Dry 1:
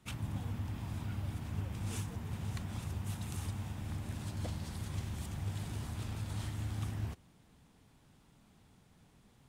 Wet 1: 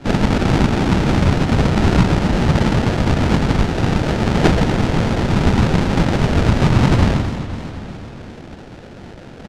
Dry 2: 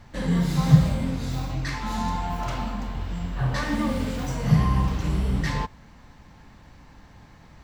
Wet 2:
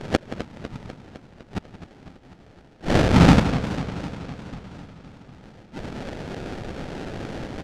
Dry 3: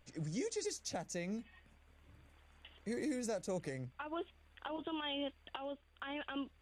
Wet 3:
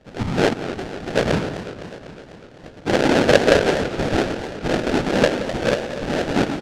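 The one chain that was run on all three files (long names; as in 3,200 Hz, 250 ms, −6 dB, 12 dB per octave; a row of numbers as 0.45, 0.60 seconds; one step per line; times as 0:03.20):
every partial snapped to a pitch grid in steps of 2 semitones
high-pass filter 140 Hz 12 dB per octave
on a send: single-tap delay 121 ms −7 dB
on the sum: gate with flip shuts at −23 dBFS, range −39 dB
high-shelf EQ 2,100 Hz −10 dB
treble cut that deepens with the level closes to 1,300 Hz, closed at −38 dBFS
dynamic equaliser 530 Hz, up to +6 dB, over −47 dBFS, Q 0.72
random phases in short frames
sample-rate reduction 1,100 Hz, jitter 20%
low-pass filter 5,400 Hz 12 dB per octave
slap from a distant wall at 30 metres, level −14 dB
feedback echo with a swinging delay time 251 ms, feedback 65%, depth 192 cents, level −12 dB
normalise the peak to −1.5 dBFS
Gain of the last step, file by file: +31.0, +21.0, +20.0 decibels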